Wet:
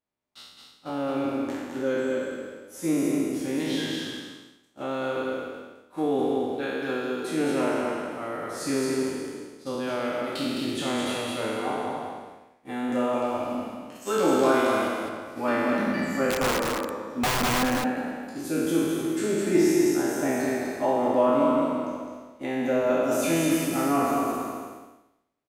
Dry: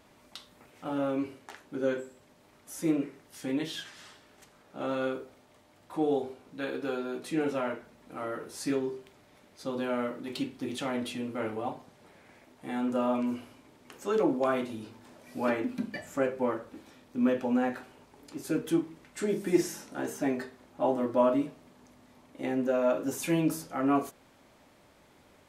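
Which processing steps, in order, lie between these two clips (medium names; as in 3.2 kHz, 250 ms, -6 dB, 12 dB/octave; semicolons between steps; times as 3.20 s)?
spectral sustain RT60 2.31 s; expander -35 dBFS; 13.95–14.88 s: treble shelf 3.3 kHz +8.5 dB; 16.30–17.63 s: integer overflow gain 20 dB; delay 211 ms -4 dB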